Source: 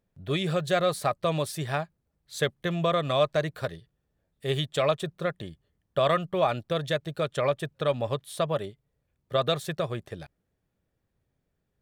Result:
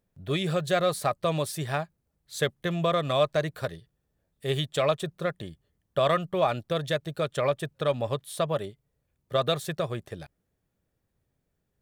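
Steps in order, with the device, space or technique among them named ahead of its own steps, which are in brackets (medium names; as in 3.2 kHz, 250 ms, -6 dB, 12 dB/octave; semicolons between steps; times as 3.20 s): exciter from parts (in parallel at -4.5 dB: high-pass 4.8 kHz 6 dB/octave + saturation -38.5 dBFS, distortion -8 dB + high-pass 4.7 kHz 6 dB/octave)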